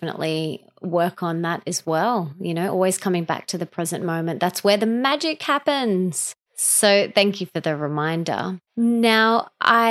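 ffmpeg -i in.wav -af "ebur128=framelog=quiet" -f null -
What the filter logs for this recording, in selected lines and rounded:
Integrated loudness:
  I:         -21.0 LUFS
  Threshold: -31.1 LUFS
Loudness range:
  LRA:         4.1 LU
  Threshold: -41.1 LUFS
  LRA low:   -23.4 LUFS
  LRA high:  -19.2 LUFS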